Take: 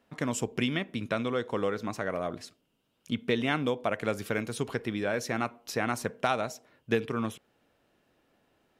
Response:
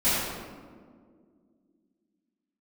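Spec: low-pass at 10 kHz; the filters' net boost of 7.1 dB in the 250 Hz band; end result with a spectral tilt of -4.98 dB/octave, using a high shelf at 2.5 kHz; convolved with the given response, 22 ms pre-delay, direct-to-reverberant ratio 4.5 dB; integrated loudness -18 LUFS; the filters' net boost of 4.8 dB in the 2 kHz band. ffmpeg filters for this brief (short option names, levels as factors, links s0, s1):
-filter_complex "[0:a]lowpass=10000,equalizer=f=250:t=o:g=8,equalizer=f=2000:t=o:g=3,highshelf=f=2500:g=6.5,asplit=2[s0][s1];[1:a]atrim=start_sample=2205,adelay=22[s2];[s1][s2]afir=irnorm=-1:irlink=0,volume=0.106[s3];[s0][s3]amix=inputs=2:normalize=0,volume=2.24"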